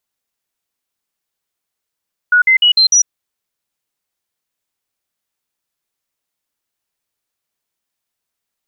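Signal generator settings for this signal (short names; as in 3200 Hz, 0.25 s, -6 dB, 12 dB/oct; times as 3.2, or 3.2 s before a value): stepped sine 1460 Hz up, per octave 2, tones 5, 0.10 s, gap 0.05 s -6.5 dBFS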